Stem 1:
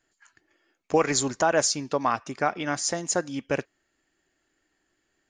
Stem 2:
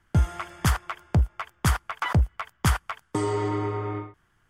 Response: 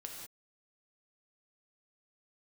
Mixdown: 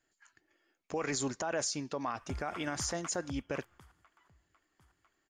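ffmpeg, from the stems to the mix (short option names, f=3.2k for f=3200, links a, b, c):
-filter_complex "[0:a]volume=-5.5dB,asplit=2[a][b];[1:a]acompressor=threshold=-35dB:ratio=2.5,alimiter=level_in=2.5dB:limit=-24dB:level=0:latency=1:release=475,volume=-2.5dB,adelay=2150,volume=-3dB,afade=t=out:st=3.77:d=0.49:silence=0.354813,asplit=2[c][d];[d]volume=-23dB[e];[b]apad=whole_len=293147[f];[c][f]sidechaingate=range=-19dB:threshold=-55dB:ratio=16:detection=peak[g];[2:a]atrim=start_sample=2205[h];[e][h]afir=irnorm=-1:irlink=0[i];[a][g][i]amix=inputs=3:normalize=0,alimiter=level_in=1dB:limit=-24dB:level=0:latency=1:release=22,volume=-1dB"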